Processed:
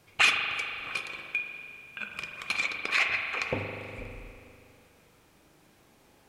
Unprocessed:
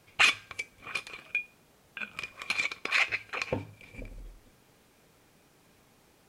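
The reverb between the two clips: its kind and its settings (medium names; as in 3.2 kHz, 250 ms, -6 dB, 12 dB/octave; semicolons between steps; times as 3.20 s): spring tank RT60 2.5 s, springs 40 ms, chirp 45 ms, DRR 3 dB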